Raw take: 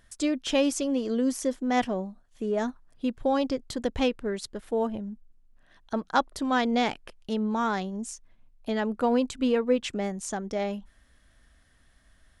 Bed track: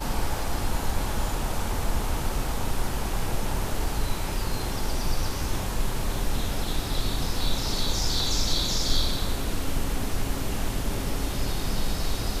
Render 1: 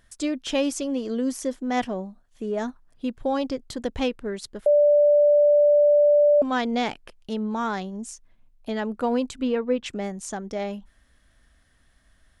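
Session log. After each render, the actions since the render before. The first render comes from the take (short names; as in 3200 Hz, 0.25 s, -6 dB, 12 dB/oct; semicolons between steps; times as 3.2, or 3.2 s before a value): 4.66–6.42 bleep 587 Hz -13.5 dBFS; 9.42–9.86 air absorption 110 m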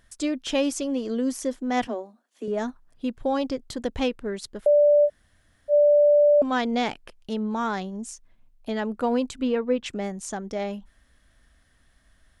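1.87–2.48 steep high-pass 220 Hz 96 dB/oct; 5.07–5.71 room tone, crossfade 0.06 s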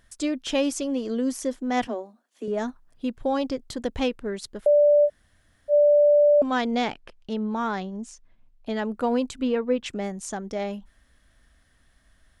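6.85–8.7 air absorption 69 m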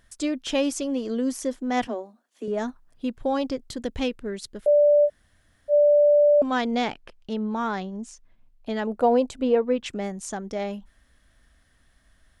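3.69–4.68 bell 900 Hz -5 dB 1.5 oct; 8.87–9.62 EQ curve 280 Hz 0 dB, 670 Hz +9 dB, 1200 Hz -2 dB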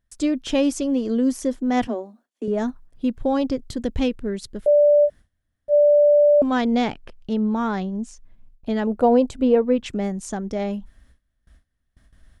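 gate with hold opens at -49 dBFS; low shelf 340 Hz +9.5 dB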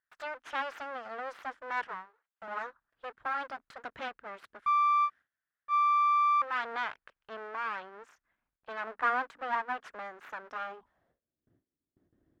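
full-wave rectifier; band-pass sweep 1500 Hz -> 340 Hz, 10.64–11.4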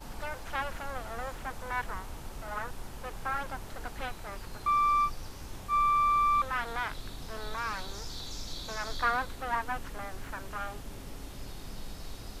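add bed track -15 dB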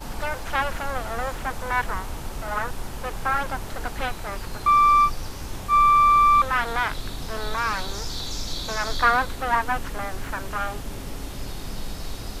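gain +9.5 dB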